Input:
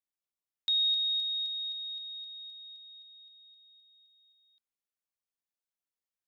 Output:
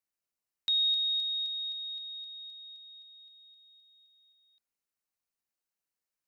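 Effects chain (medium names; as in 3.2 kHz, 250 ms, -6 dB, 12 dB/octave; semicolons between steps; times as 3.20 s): band-stop 3.4 kHz, Q 6; trim +2.5 dB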